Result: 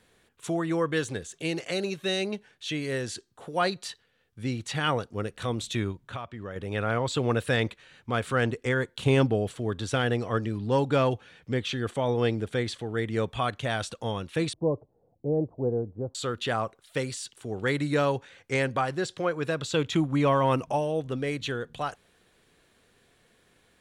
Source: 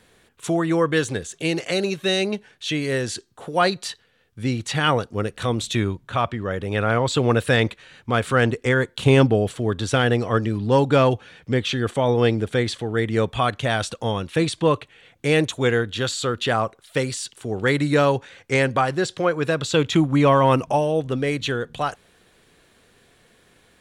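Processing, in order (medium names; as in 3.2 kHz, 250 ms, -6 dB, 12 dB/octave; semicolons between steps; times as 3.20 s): 5.91–6.56 s: compression 12:1, threshold -26 dBFS, peak gain reduction 11 dB; 14.53–16.15 s: steep low-pass 800 Hz 36 dB/octave; trim -7 dB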